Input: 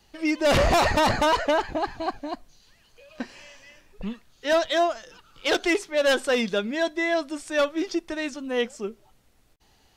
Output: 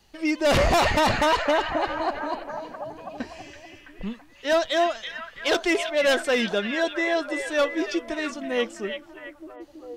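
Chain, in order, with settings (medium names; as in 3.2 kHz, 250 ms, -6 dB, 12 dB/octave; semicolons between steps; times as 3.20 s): repeats whose band climbs or falls 330 ms, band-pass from 2.5 kHz, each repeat -0.7 oct, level -4 dB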